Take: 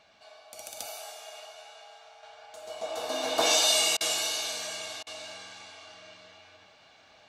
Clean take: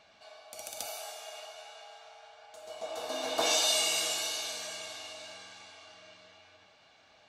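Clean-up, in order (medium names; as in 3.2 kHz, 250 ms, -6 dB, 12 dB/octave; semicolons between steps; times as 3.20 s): interpolate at 3.97/5.03 s, 36 ms; trim 0 dB, from 2.23 s -4 dB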